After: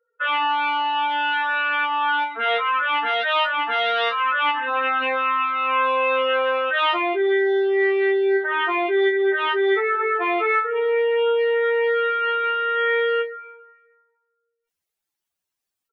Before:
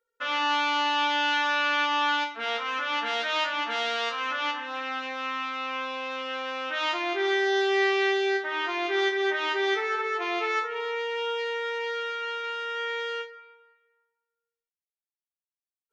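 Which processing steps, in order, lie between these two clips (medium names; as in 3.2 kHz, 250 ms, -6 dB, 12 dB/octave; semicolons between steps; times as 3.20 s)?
spectral contrast enhancement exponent 2; gain riding 0.5 s; doubling 21 ms -14 dB; trim +7.5 dB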